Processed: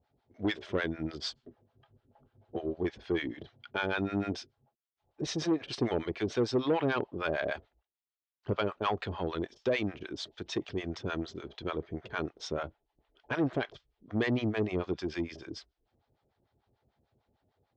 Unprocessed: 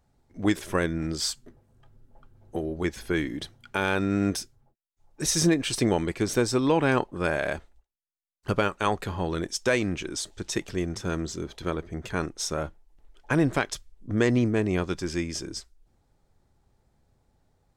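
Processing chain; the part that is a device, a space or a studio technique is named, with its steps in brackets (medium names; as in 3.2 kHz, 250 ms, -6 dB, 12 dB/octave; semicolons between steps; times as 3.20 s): guitar amplifier with harmonic tremolo (harmonic tremolo 6.7 Hz, depth 100%, crossover 660 Hz; saturation -22 dBFS, distortion -14 dB; cabinet simulation 84–4500 Hz, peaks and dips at 170 Hz -5 dB, 420 Hz +3 dB, 670 Hz +4 dB, 3.2 kHz +4 dB)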